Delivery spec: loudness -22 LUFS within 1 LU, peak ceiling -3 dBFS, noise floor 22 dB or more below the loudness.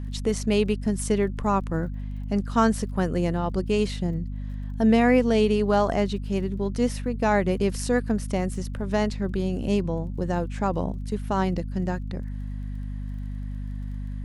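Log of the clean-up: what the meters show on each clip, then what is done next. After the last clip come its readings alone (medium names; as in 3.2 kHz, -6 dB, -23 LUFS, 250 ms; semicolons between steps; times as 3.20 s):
tick rate 28 per s; hum 50 Hz; highest harmonic 250 Hz; hum level -29 dBFS; loudness -26.0 LUFS; peak level -7.0 dBFS; loudness target -22.0 LUFS
-> de-click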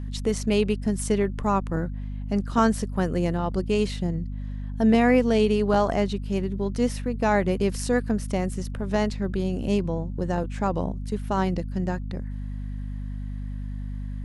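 tick rate 0 per s; hum 50 Hz; highest harmonic 250 Hz; hum level -29 dBFS
-> hum notches 50/100/150/200/250 Hz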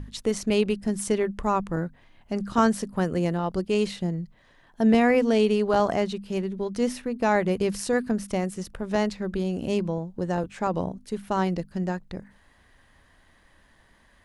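hum not found; loudness -26.0 LUFS; peak level -8.0 dBFS; loudness target -22.0 LUFS
-> trim +4 dB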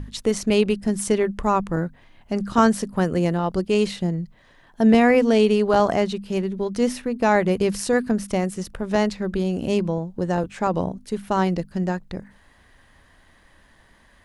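loudness -22.0 LUFS; peak level -4.0 dBFS; noise floor -55 dBFS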